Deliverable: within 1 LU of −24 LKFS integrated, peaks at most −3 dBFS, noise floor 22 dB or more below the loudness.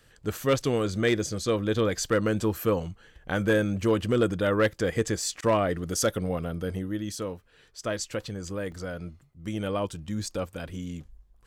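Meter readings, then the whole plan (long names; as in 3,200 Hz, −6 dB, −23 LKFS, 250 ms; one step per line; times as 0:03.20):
share of clipped samples 0.3%; peaks flattened at −15.5 dBFS; number of dropouts 1; longest dropout 1.9 ms; integrated loudness −28.0 LKFS; sample peak −15.5 dBFS; target loudness −24.0 LKFS
→ clipped peaks rebuilt −15.5 dBFS
repair the gap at 0:08.72, 1.9 ms
level +4 dB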